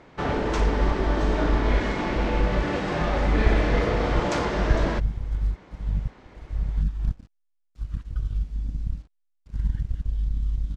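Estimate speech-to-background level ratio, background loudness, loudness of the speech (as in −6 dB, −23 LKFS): −3.0 dB, −26.5 LKFS, −29.5 LKFS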